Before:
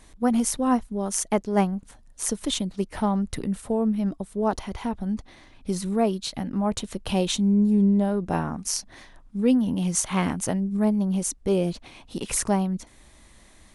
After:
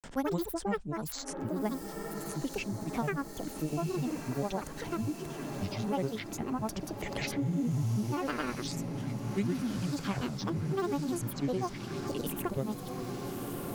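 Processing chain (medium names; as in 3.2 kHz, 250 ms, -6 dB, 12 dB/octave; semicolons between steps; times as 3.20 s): granulator, pitch spread up and down by 12 st; on a send: echo that smears into a reverb 1329 ms, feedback 64%, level -11.5 dB; on the sum: three bands compressed up and down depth 70%; trim -8.5 dB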